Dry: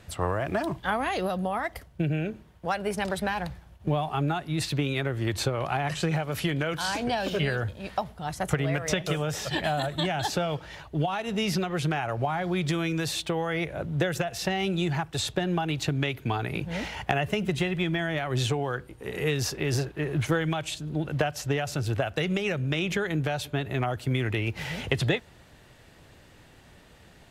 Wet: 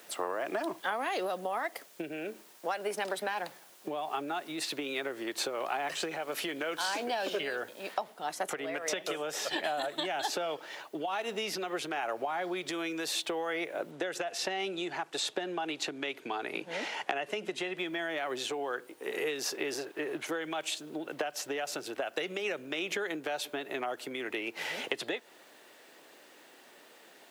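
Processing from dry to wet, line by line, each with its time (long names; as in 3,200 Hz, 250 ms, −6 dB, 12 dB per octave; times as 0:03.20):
0:07.94: noise floor change −58 dB −67 dB
0:13.91–0:17.78: low-pass filter 9,500 Hz
whole clip: downward compressor, threshold −28 dBFS; high-pass filter 300 Hz 24 dB per octave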